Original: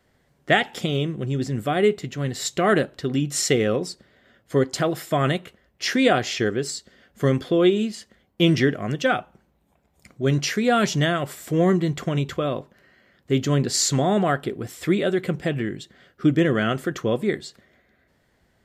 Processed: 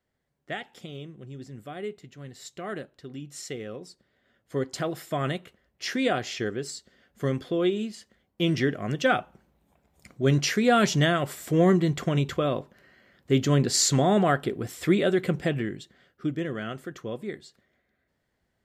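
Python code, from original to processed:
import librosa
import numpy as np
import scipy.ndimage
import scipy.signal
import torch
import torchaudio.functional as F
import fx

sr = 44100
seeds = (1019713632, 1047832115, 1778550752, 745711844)

y = fx.gain(x, sr, db=fx.line((3.71, -16.0), (4.78, -7.0), (8.44, -7.0), (9.15, -1.0), (15.42, -1.0), (16.39, -11.5)))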